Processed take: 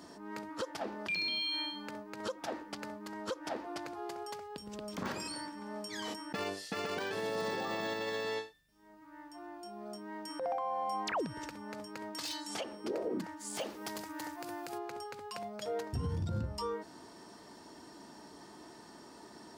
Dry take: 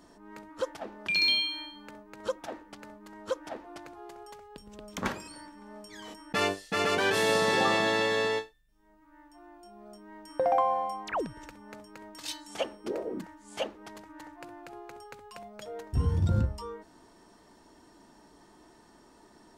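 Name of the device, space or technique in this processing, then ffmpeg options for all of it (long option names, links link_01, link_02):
broadcast voice chain: -filter_complex "[0:a]asplit=3[link_01][link_02][link_03];[link_01]afade=type=out:start_time=13.39:duration=0.02[link_04];[link_02]aemphasis=mode=production:type=75kf,afade=type=in:start_time=13.39:duration=0.02,afade=type=out:start_time=14.77:duration=0.02[link_05];[link_03]afade=type=in:start_time=14.77:duration=0.02[link_06];[link_04][link_05][link_06]amix=inputs=3:normalize=0,highpass=95,deesser=0.95,acompressor=threshold=-34dB:ratio=5,equalizer=frequency=4800:width_type=o:width=0.44:gain=5,alimiter=level_in=8dB:limit=-24dB:level=0:latency=1:release=74,volume=-8dB,volume=4.5dB"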